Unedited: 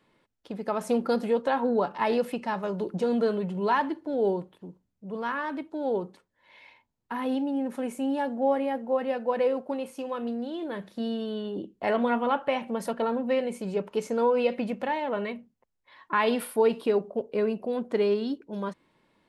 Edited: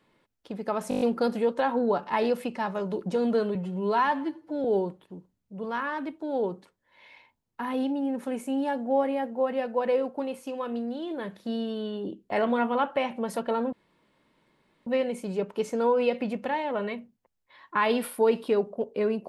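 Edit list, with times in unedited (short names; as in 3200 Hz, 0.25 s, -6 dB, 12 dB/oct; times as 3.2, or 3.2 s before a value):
0.89 stutter 0.02 s, 7 plays
3.43–4.16 stretch 1.5×
13.24 insert room tone 1.14 s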